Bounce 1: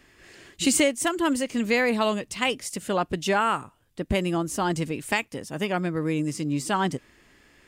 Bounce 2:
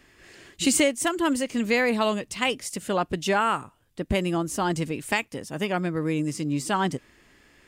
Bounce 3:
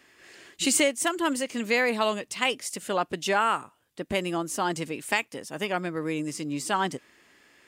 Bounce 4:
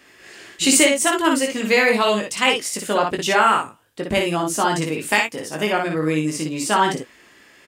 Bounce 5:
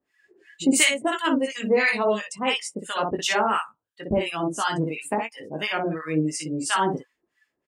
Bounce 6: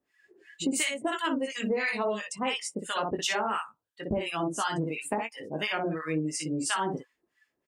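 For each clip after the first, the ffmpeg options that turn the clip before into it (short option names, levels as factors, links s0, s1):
-af anull
-af "highpass=f=370:p=1"
-af "aecho=1:1:19|58|76:0.562|0.631|0.211,volume=2"
-filter_complex "[0:a]acrossover=split=960[s0][s1];[s0]aeval=exprs='val(0)*(1-1/2+1/2*cos(2*PI*2.9*n/s))':c=same[s2];[s1]aeval=exprs='val(0)*(1-1/2-1/2*cos(2*PI*2.9*n/s))':c=same[s3];[s2][s3]amix=inputs=2:normalize=0,afftdn=nr=22:nf=-38"
-af "acompressor=threshold=0.0631:ratio=6,volume=0.841"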